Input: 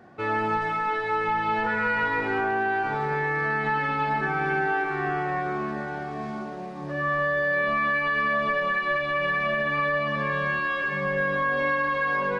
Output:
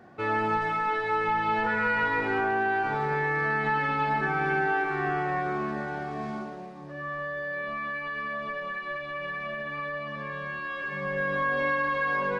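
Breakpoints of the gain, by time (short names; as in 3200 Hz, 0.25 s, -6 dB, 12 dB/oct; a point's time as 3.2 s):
6.35 s -1 dB
6.9 s -9 dB
10.51 s -9 dB
11.42 s -2 dB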